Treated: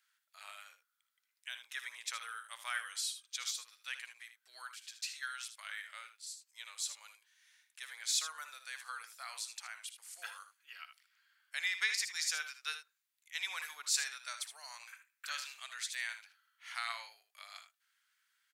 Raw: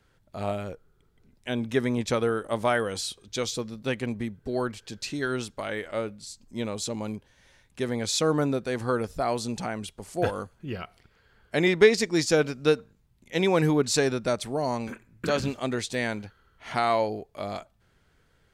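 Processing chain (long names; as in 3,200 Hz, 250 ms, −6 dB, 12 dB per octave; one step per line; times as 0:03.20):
high-pass filter 1,400 Hz 24 dB per octave
high-shelf EQ 9,000 Hz +9.5 dB
on a send: ambience of single reflections 60 ms −13.5 dB, 77 ms −11 dB
on the sum: level −7.5 dB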